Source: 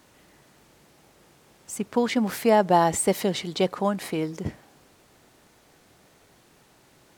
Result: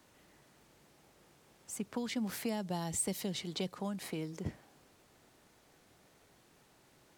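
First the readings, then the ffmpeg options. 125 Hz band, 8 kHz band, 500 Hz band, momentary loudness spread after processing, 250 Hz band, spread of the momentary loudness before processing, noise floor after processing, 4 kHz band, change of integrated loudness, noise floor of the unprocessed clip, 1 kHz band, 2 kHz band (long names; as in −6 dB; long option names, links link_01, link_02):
−9.5 dB, −7.5 dB, −18.5 dB, 9 LU, −11.5 dB, 15 LU, −66 dBFS, −9.0 dB, −14.0 dB, −59 dBFS, −21.5 dB, −14.0 dB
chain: -filter_complex "[0:a]acrossover=split=210|3000[link_01][link_02][link_03];[link_02]acompressor=threshold=-32dB:ratio=6[link_04];[link_01][link_04][link_03]amix=inputs=3:normalize=0,volume=-7.5dB"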